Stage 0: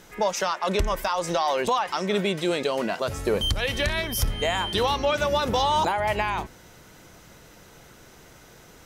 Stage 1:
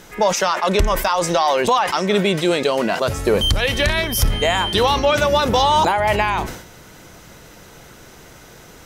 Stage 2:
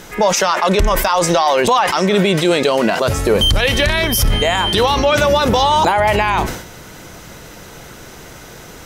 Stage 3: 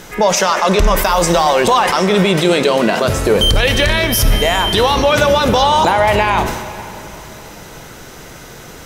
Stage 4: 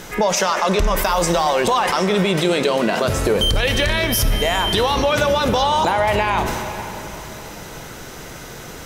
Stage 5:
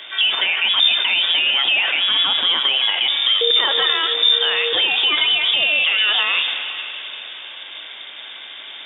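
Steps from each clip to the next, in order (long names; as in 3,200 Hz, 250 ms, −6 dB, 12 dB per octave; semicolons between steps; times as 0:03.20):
level that may fall only so fast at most 85 dB per second; level +7 dB
brickwall limiter −11.5 dBFS, peak gain reduction 6.5 dB; level +6.5 dB
dense smooth reverb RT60 3.3 s, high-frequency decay 0.9×, DRR 9.5 dB; level +1 dB
downward compressor 2 to 1, threshold −18 dBFS, peak gain reduction 6.5 dB
stylus tracing distortion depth 0.079 ms; voice inversion scrambler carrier 3,600 Hz; high-pass filter 400 Hz 12 dB per octave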